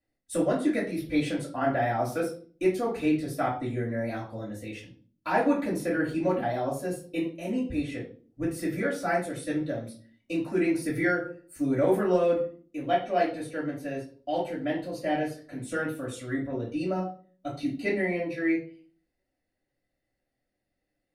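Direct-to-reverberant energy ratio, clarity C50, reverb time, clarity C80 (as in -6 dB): -7.0 dB, 8.0 dB, 0.45 s, 13.0 dB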